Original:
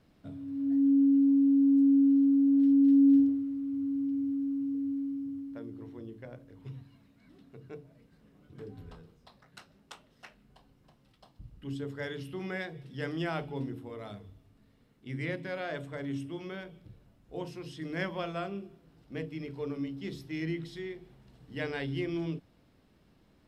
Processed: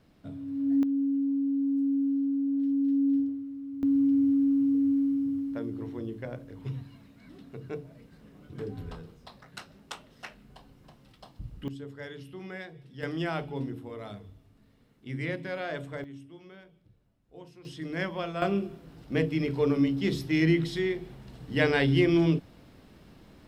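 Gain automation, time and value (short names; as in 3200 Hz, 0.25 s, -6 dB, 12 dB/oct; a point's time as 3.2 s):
+2.5 dB
from 0.83 s -4.5 dB
from 3.83 s +8 dB
from 11.68 s -4 dB
from 13.03 s +2 dB
from 16.04 s -9.5 dB
from 17.65 s +2 dB
from 18.42 s +11 dB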